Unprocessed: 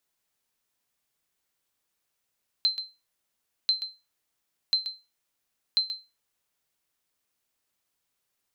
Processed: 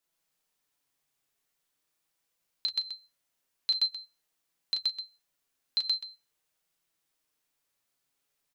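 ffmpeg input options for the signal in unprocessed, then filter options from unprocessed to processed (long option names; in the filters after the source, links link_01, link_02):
-f lavfi -i "aevalsrc='0.168*(sin(2*PI*4100*mod(t,1.04))*exp(-6.91*mod(t,1.04)/0.26)+0.282*sin(2*PI*4100*max(mod(t,1.04)-0.13,0))*exp(-6.91*max(mod(t,1.04)-0.13,0)/0.26))':duration=4.16:sample_rate=44100"
-filter_complex "[0:a]bandreject=frequency=60:width_type=h:width=6,bandreject=frequency=120:width_type=h:width=6,flanger=delay=5.9:depth=1.6:regen=45:speed=0.44:shape=triangular,asplit=2[link_01][link_02];[link_02]aecho=0:1:34.99|125.4:0.708|0.891[link_03];[link_01][link_03]amix=inputs=2:normalize=0"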